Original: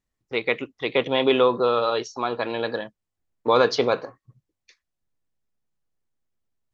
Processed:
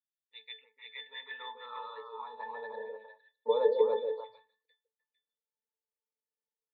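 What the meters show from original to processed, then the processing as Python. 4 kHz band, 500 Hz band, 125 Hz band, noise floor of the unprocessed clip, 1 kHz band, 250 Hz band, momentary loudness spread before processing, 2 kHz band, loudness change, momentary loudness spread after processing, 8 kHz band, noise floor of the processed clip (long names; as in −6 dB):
−16.0 dB, −10.0 dB, below −35 dB, −83 dBFS, −14.0 dB, below −25 dB, 11 LU, −17.0 dB, −11.0 dB, 20 LU, can't be measured, below −85 dBFS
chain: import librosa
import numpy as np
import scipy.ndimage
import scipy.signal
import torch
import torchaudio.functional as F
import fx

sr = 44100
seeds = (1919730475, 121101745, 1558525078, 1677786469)

p1 = scipy.signal.sosfilt(scipy.signal.ellip(4, 1.0, 40, 4400.0, 'lowpass', fs=sr, output='sos'), x)
p2 = fx.octave_resonator(p1, sr, note='A', decay_s=0.21)
p3 = p2 + fx.echo_stepped(p2, sr, ms=151, hz=390.0, octaves=1.4, feedback_pct=70, wet_db=-0.5, dry=0)
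y = fx.filter_sweep_highpass(p3, sr, from_hz=3400.0, to_hz=550.0, start_s=0.12, end_s=3.17, q=3.3)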